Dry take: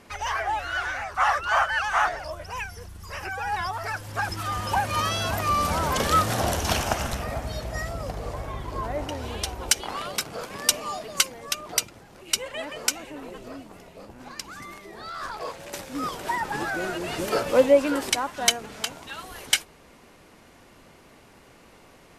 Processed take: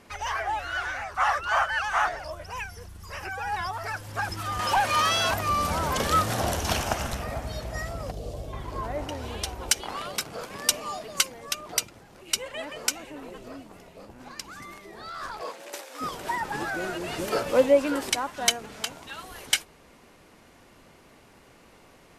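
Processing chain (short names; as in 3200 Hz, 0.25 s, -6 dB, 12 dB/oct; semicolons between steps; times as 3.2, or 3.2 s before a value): 4.59–5.34 overdrive pedal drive 14 dB, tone 7100 Hz, clips at -12.5 dBFS; 8.11–8.53 band shelf 1400 Hz -13.5 dB; 15.41–16 HPF 160 Hz -> 530 Hz 24 dB/oct; gain -2 dB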